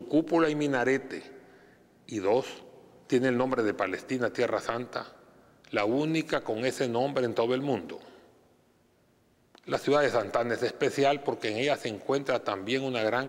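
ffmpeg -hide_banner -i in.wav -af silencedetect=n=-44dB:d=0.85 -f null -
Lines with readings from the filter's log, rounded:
silence_start: 8.17
silence_end: 9.55 | silence_duration: 1.38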